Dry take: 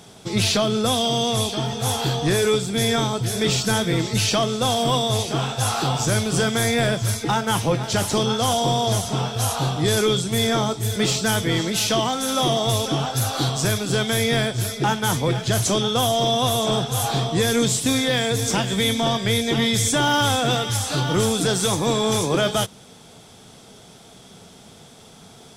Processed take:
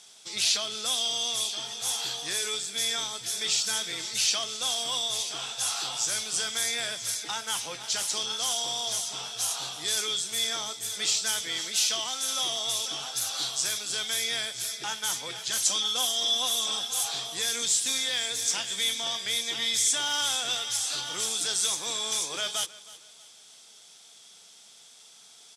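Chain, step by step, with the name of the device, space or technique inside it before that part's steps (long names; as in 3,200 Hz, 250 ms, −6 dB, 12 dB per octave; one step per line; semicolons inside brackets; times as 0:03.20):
0:15.50–0:17.04: comb filter 3.8 ms, depth 59%
piezo pickup straight into a mixer (low-pass filter 7,100 Hz 12 dB per octave; first difference)
repeating echo 318 ms, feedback 36%, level −19 dB
level +3 dB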